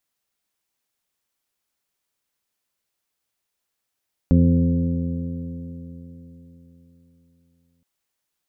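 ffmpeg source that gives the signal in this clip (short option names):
-f lavfi -i "aevalsrc='0.168*pow(10,-3*t/3.92)*sin(2*PI*84.1*t)+0.188*pow(10,-3*t/3.92)*sin(2*PI*168.8*t)+0.158*pow(10,-3*t/3.92)*sin(2*PI*254.71*t)+0.0224*pow(10,-3*t/3.92)*sin(2*PI*342.39*t)+0.0237*pow(10,-3*t/3.92)*sin(2*PI*432.42*t)+0.0376*pow(10,-3*t/3.92)*sin(2*PI*525.32*t)':d=3.52:s=44100"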